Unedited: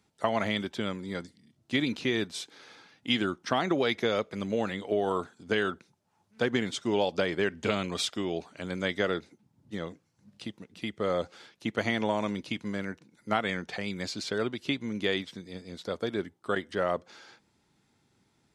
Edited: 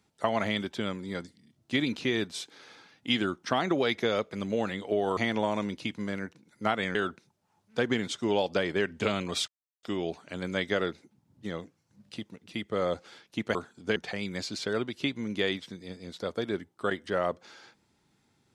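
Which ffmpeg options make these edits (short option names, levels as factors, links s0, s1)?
-filter_complex "[0:a]asplit=6[s0][s1][s2][s3][s4][s5];[s0]atrim=end=5.172[s6];[s1]atrim=start=11.828:end=13.612[s7];[s2]atrim=start=5.578:end=8.11,asetpts=PTS-STARTPTS,afade=t=out:st=2.528:d=0.004:c=hsin,apad=pad_dur=0.35[s8];[s3]atrim=start=8.11:end=11.832,asetpts=PTS-STARTPTS,afade=t=in:d=0.004:c=hsin[s9];[s4]atrim=start=5.168:end=5.582[s10];[s5]atrim=start=13.608[s11];[s6][s7]acrossfade=d=0.004:c1=hsin:c2=hsin[s12];[s8][s9]concat=n=2:v=0:a=1[s13];[s12][s13]acrossfade=d=0.004:c1=hsin:c2=hsin[s14];[s14][s10]acrossfade=d=0.004:c1=hsin:c2=hsin[s15];[s15][s11]acrossfade=d=0.004:c1=hsin:c2=hsin"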